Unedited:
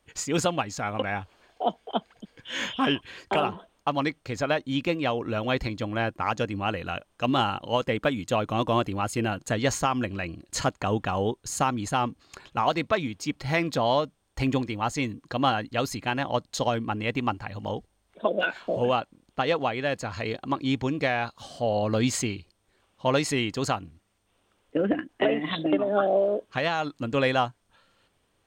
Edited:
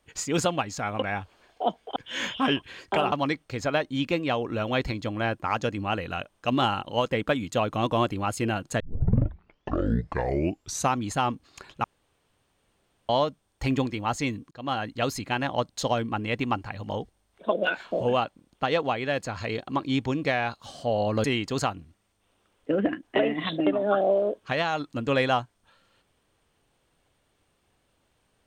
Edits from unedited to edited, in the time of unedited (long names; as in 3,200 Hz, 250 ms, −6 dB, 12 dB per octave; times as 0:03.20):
0:01.96–0:02.35: remove
0:03.51–0:03.88: remove
0:09.56: tape start 2.16 s
0:12.60–0:13.85: fill with room tone
0:15.27–0:15.69: fade in, from −23.5 dB
0:22.00–0:23.30: remove